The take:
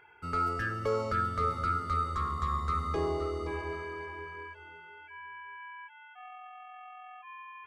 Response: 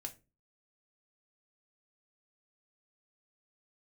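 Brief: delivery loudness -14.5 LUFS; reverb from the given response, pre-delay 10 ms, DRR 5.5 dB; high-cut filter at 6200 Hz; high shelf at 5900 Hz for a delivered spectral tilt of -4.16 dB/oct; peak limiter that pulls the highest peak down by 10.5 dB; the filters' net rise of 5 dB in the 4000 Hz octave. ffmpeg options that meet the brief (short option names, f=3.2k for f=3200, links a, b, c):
-filter_complex "[0:a]lowpass=6.2k,equalizer=f=4k:t=o:g=4.5,highshelf=f=5.9k:g=7,alimiter=level_in=5.5dB:limit=-24dB:level=0:latency=1,volume=-5.5dB,asplit=2[a][b];[1:a]atrim=start_sample=2205,adelay=10[c];[b][c]afir=irnorm=-1:irlink=0,volume=-2dB[d];[a][d]amix=inputs=2:normalize=0,volume=22dB"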